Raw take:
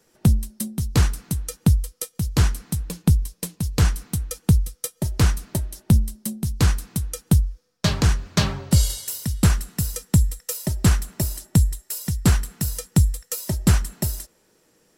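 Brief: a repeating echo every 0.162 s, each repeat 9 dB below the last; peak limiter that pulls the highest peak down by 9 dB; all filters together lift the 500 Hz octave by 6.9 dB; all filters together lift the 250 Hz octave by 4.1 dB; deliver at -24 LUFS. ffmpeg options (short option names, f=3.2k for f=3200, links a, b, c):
-af "equalizer=f=250:t=o:g=5,equalizer=f=500:t=o:g=7,alimiter=limit=-10.5dB:level=0:latency=1,aecho=1:1:162|324|486|648:0.355|0.124|0.0435|0.0152"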